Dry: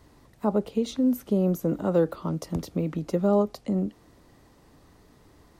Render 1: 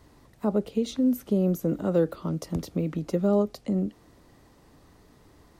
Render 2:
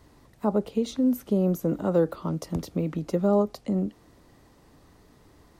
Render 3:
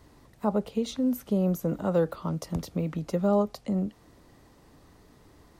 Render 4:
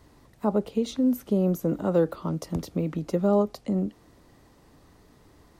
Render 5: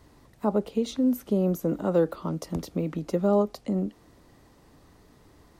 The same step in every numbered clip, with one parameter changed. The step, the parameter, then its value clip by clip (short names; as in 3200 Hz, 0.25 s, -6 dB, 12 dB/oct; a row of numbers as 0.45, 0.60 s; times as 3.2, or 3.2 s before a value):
dynamic EQ, frequency: 930, 2800, 330, 9500, 110 Hz